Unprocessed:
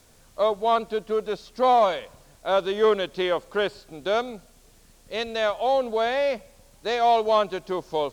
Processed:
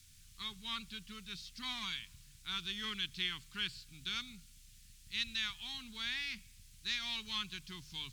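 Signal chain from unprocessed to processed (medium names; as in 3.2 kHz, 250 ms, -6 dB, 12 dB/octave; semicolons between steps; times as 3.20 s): Chebyshev band-stop 120–2700 Hz, order 2; hum notches 50/100/150 Hz; trim -2.5 dB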